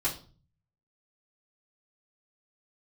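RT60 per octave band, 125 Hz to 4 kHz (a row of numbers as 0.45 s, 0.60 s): 0.85 s, 0.60 s, 0.40 s, 0.40 s, 0.30 s, 0.35 s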